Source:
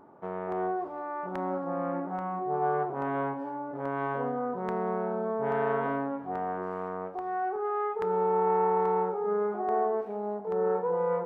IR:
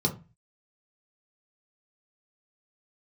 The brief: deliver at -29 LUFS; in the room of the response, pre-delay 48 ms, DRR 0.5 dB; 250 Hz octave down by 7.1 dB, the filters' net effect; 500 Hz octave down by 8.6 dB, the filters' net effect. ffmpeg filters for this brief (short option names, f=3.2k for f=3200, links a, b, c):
-filter_complex "[0:a]equalizer=f=250:t=o:g=-7,equalizer=f=500:t=o:g=-8.5,asplit=2[a][b];[1:a]atrim=start_sample=2205,adelay=48[c];[b][c]afir=irnorm=-1:irlink=0,volume=-9dB[d];[a][d]amix=inputs=2:normalize=0"